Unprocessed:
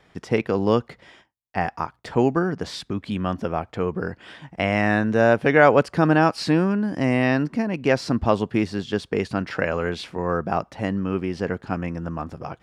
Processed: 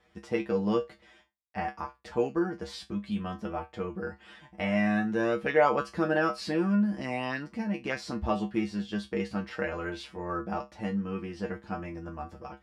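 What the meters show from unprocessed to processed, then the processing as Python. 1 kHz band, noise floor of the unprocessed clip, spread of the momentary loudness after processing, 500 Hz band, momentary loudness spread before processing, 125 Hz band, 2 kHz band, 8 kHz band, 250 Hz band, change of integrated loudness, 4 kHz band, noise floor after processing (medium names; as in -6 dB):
-8.5 dB, -61 dBFS, 13 LU, -9.0 dB, 12 LU, -11.0 dB, -9.0 dB, no reading, -7.5 dB, -8.5 dB, -8.5 dB, -64 dBFS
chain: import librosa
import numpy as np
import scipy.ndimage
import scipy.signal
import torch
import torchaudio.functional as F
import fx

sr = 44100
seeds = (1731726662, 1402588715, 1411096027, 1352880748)

y = fx.comb_fb(x, sr, f0_hz=68.0, decay_s=0.18, harmonics='odd', damping=0.0, mix_pct=100)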